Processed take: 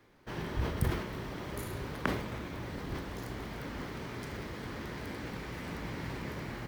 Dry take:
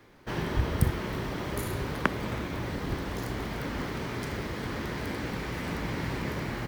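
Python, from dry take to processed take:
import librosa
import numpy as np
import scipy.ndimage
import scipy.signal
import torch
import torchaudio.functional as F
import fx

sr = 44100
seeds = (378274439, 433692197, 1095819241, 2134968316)

y = fx.sustainer(x, sr, db_per_s=64.0)
y = F.gain(torch.from_numpy(y), -7.0).numpy()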